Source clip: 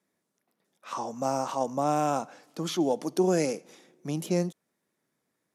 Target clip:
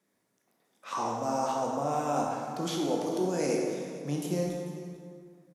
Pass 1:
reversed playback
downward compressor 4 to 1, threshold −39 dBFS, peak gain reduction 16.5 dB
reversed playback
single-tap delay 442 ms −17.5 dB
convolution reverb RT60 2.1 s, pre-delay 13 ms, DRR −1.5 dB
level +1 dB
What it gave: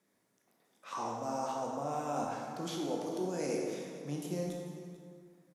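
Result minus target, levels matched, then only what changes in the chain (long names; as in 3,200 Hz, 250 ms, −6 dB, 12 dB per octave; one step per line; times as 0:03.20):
downward compressor: peak gain reduction +6.5 dB
change: downward compressor 4 to 1, threshold −30.5 dBFS, peak gain reduction 10.5 dB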